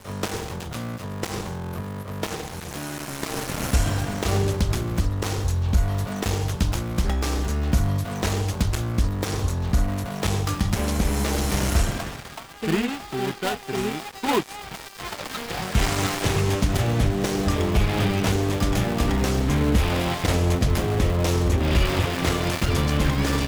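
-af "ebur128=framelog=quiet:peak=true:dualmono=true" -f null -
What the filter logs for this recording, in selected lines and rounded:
Integrated loudness:
  I:         -21.6 LUFS
  Threshold: -31.7 LUFS
Loudness range:
  LRA:         5.4 LU
  Threshold: -41.6 LUFS
  LRA low:   -24.8 LUFS
  LRA high:  -19.4 LUFS
True peak:
  Peak:       -9.3 dBFS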